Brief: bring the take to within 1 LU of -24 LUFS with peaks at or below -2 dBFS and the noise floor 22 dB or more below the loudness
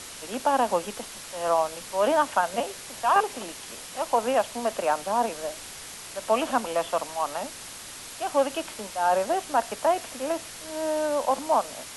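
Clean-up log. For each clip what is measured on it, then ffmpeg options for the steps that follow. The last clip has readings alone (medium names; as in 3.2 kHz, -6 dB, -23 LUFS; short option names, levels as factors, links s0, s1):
noise floor -41 dBFS; noise floor target -49 dBFS; loudness -27.0 LUFS; peak level -9.5 dBFS; loudness target -24.0 LUFS
-> -af "afftdn=nr=8:nf=-41"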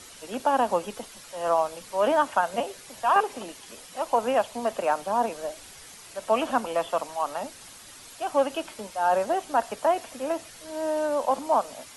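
noise floor -47 dBFS; noise floor target -49 dBFS
-> -af "afftdn=nr=6:nf=-47"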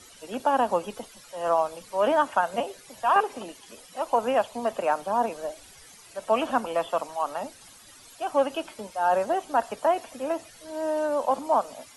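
noise floor -51 dBFS; loudness -27.0 LUFS; peak level -9.5 dBFS; loudness target -24.0 LUFS
-> -af "volume=1.41"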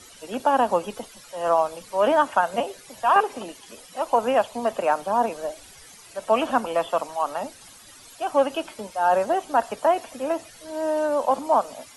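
loudness -24.0 LUFS; peak level -6.5 dBFS; noise floor -48 dBFS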